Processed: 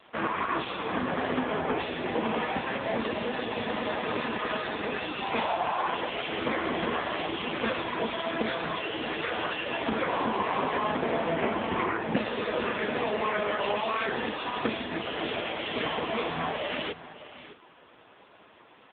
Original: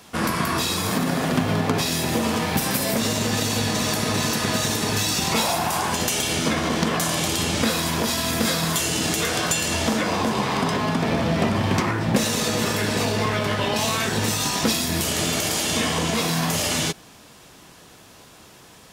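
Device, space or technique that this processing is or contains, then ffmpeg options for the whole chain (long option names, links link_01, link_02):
satellite phone: -filter_complex "[0:a]asettb=1/sr,asplit=3[link_01][link_02][link_03];[link_01]atrim=end=1.444[link_04];[link_02]atrim=start=1.44:end=2.27,asetpts=PTS-STARTPTS,afade=type=in:duration=0.004:curve=qsin,afade=type=out:start_time=0.826:duration=0.004:curve=qsin,lowpass=5000[link_05];[link_03]atrim=start=2.266[link_06];[link_04][link_05]acrossfade=duration=0.004:curve1=hsin:curve2=qsin[link_07];[link_07][link_06]acrossfade=duration=0.004:curve1=qsin:curve2=hsin,highpass=310,lowpass=3300,aecho=1:1:607:0.188" -ar 8000 -c:a libopencore_amrnb -b:a 5900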